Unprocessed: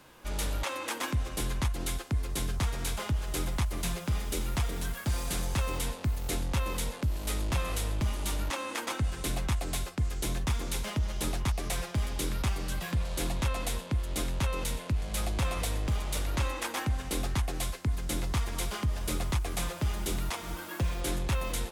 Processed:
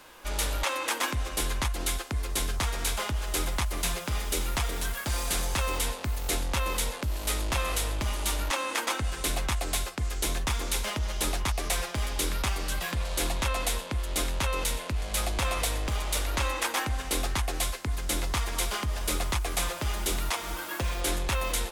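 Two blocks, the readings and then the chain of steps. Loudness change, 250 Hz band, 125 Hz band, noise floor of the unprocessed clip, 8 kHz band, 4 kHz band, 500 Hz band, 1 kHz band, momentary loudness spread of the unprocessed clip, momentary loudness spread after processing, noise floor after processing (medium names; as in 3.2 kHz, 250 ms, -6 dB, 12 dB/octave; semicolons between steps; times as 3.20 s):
+3.0 dB, -1.5 dB, -1.5 dB, -42 dBFS, +6.0 dB, +6.0 dB, +3.5 dB, +5.0 dB, 2 LU, 3 LU, -38 dBFS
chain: peaking EQ 130 Hz -12 dB 2.3 oct; trim +6 dB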